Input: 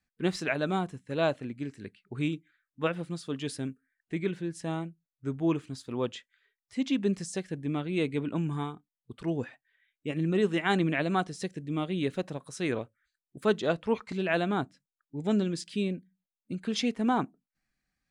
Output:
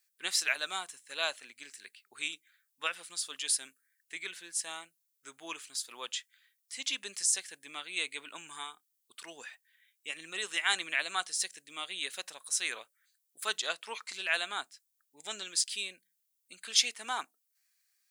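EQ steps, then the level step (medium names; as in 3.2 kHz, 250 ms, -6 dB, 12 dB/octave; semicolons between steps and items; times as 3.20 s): high-pass 1.2 kHz 12 dB/octave; treble shelf 3.1 kHz +11 dB; treble shelf 6.5 kHz +10 dB; -1.5 dB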